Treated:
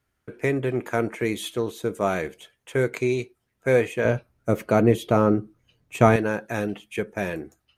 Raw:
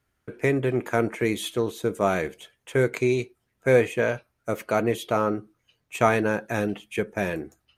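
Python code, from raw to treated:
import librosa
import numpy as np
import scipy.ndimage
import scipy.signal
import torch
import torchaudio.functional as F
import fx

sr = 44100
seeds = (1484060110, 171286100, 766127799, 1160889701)

y = fx.low_shelf(x, sr, hz=460.0, db=11.5, at=(4.05, 6.16))
y = F.gain(torch.from_numpy(y), -1.0).numpy()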